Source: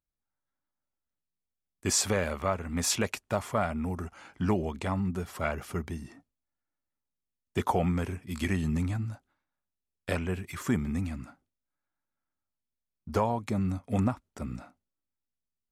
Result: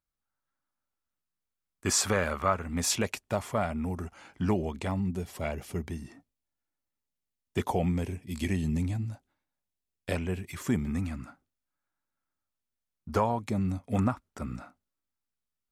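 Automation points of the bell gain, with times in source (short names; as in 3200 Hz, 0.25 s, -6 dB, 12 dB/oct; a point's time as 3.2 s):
bell 1300 Hz 0.78 oct
+6 dB
from 2.63 s -3 dB
from 4.91 s -11 dB
from 5.88 s -2 dB
from 7.64 s -12 dB
from 9.09 s -6 dB
from 10.87 s +3 dB
from 13.39 s -4 dB
from 13.95 s +4.5 dB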